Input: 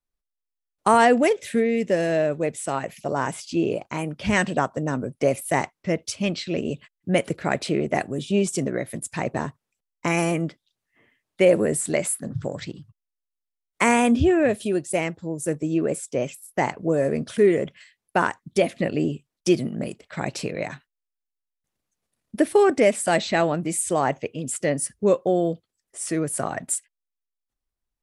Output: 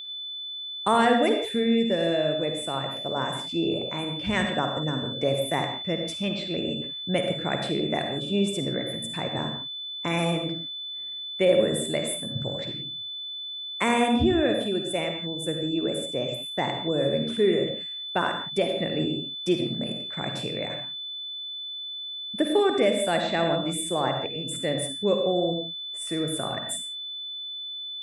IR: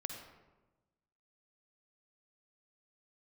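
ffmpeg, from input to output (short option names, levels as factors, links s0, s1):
-filter_complex "[0:a]aeval=exprs='val(0)+0.0398*sin(2*PI*3500*n/s)':c=same,equalizer=f=5700:t=o:w=0.87:g=-9[s0];[1:a]atrim=start_sample=2205,afade=t=out:st=0.23:d=0.01,atrim=end_sample=10584[s1];[s0][s1]afir=irnorm=-1:irlink=0,volume=0.75"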